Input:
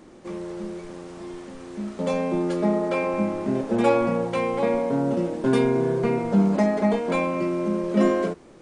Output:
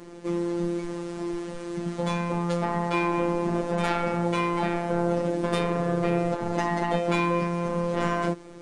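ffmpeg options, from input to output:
ffmpeg -i in.wav -af "aeval=exprs='(tanh(10*val(0)+0.05)-tanh(0.05))/10':channel_layout=same,afftfilt=real='hypot(re,im)*cos(PI*b)':imag='0':win_size=1024:overlap=0.75,afftfilt=real='re*lt(hypot(re,im),0.282)':imag='im*lt(hypot(re,im),0.282)':win_size=1024:overlap=0.75,volume=7dB" out.wav

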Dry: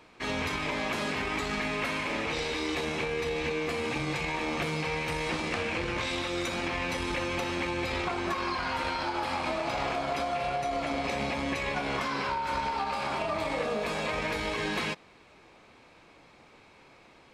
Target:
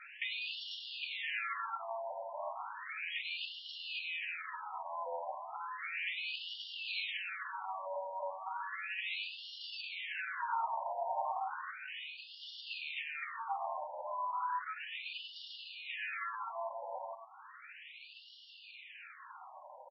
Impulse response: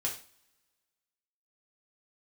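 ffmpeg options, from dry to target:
-filter_complex "[0:a]highpass=440,highshelf=frequency=3900:gain=-3.5,bandreject=frequency=1100:width=15,acompressor=threshold=-46dB:ratio=4,acrusher=bits=4:mode=log:mix=0:aa=0.000001,atempo=0.8,asplit=2[link_01][link_02];[link_02]adelay=110.8,volume=-9dB,highshelf=frequency=4000:gain=-2.49[link_03];[link_01][link_03]amix=inputs=2:normalize=0,asplit=2[link_04][link_05];[1:a]atrim=start_sample=2205,adelay=7[link_06];[link_05][link_06]afir=irnorm=-1:irlink=0,volume=-11.5dB[link_07];[link_04][link_07]amix=inputs=2:normalize=0,asetrate=48000,aresample=44100,afftfilt=real='re*between(b*sr/1024,720*pow(4000/720,0.5+0.5*sin(2*PI*0.34*pts/sr))/1.41,720*pow(4000/720,0.5+0.5*sin(2*PI*0.34*pts/sr))*1.41)':imag='im*between(b*sr/1024,720*pow(4000/720,0.5+0.5*sin(2*PI*0.34*pts/sr))/1.41,720*pow(4000/720,0.5+0.5*sin(2*PI*0.34*pts/sr))*1.41)':win_size=1024:overlap=0.75,volume=10dB"

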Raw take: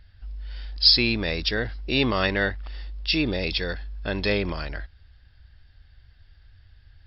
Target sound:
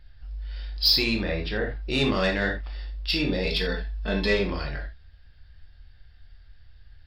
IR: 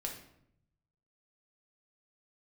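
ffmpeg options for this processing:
-filter_complex "[0:a]asettb=1/sr,asplit=3[link_01][link_02][link_03];[link_01]atrim=end=1.234[link_04];[link_02]atrim=start=1.23:end=1.81,asetpts=PTS-STARTPTS,afade=type=in:duration=0.004:curve=qsin,afade=type=out:start_time=0.576:duration=0.004:curve=qsin,lowpass=2300[link_05];[link_03]atrim=start=1.806[link_06];[link_04][link_05]acrossfade=duration=0.004:curve1=hsin:curve2=qsin[link_07];[link_07][link_06]acrossfade=duration=0.004:curve1=qsin:curve2=hsin,asettb=1/sr,asplit=3[link_08][link_09][link_10];[link_08]atrim=end=3.444[link_11];[link_09]atrim=start=3.44:end=4.39,asetpts=PTS-STARTPTS,afade=type=in:duration=0.004:curve=qsin,afade=type=out:start_time=0.946:duration=0.004:curve=qsin,aecho=1:1:4.6:0.73,atrim=end_sample=41895[link_12];[link_10]atrim=start=4.386[link_13];[link_11][link_12]acrossfade=duration=0.004:curve1=hsin:curve2=qsin[link_14];[link_14][link_13]acrossfade=duration=0.004:curve1=qsin:curve2=hsin,asoftclip=type=tanh:threshold=-12.5dB[link_15];[1:a]atrim=start_sample=2205,afade=type=out:start_time=0.14:duration=0.01,atrim=end_sample=6615[link_16];[link_15][link_16]afir=irnorm=-1:irlink=0"

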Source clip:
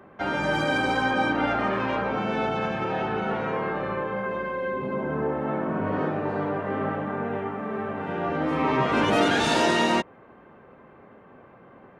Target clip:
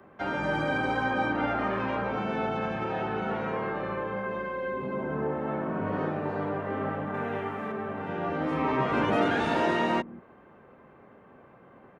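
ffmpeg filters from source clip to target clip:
ffmpeg -i in.wav -filter_complex "[0:a]asettb=1/sr,asplit=3[link_01][link_02][link_03];[link_01]atrim=end=7.144[link_04];[link_02]atrim=start=7.14:end=7.72,asetpts=PTS-STARTPTS,afade=type=in:duration=0.004:curve=qsin,afade=type=out:start_time=0.576:duration=0.004:curve=qsin,highshelf=frequency=2000:gain=10[link_05];[link_03]atrim=start=7.716[link_06];[link_04][link_05]acrossfade=duration=0.004:curve1=hsin:curve2=qsin[link_07];[link_07][link_06]acrossfade=duration=0.004:curve1=qsin:curve2=hsin,acrossover=split=290|910|2600[link_08][link_09][link_10][link_11];[link_08]aecho=1:1:182:0.316[link_12];[link_11]acompressor=threshold=-47dB:ratio=5[link_13];[link_12][link_09][link_10][link_13]amix=inputs=4:normalize=0,volume=-3.5dB" out.wav

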